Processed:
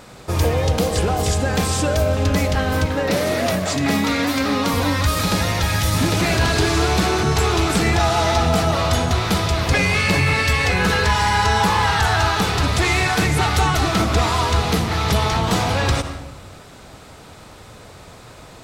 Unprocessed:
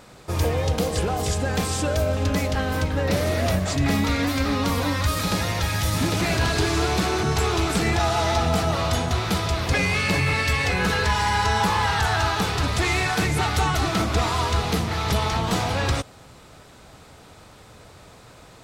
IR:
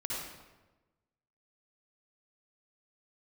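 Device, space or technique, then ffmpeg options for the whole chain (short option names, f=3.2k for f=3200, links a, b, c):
ducked reverb: -filter_complex "[0:a]asettb=1/sr,asplit=3[a][b][c];[a]atrim=end=2.864[d];[b]atrim=start=2.86:end=4.74,asetpts=PTS-STARTPTS,afade=t=in:d=0.004:c=qsin,afade=t=out:st=1.876:d=0.004:c=qsin,highpass=160[e];[c]atrim=start=4.736[f];[d][e]acrossfade=d=0.004:c1=hsin:c2=qsin[g];[g][f]acrossfade=d=0.004:c1=qsin:c2=hsin,asplit=3[h][i][j];[1:a]atrim=start_sample=2205[k];[i][k]afir=irnorm=-1:irlink=0[l];[j]apad=whole_len=821885[m];[l][m]sidechaincompress=threshold=-28dB:ratio=8:attack=16:release=113,volume=-9.5dB[n];[h][n]amix=inputs=2:normalize=0,volume=3.5dB"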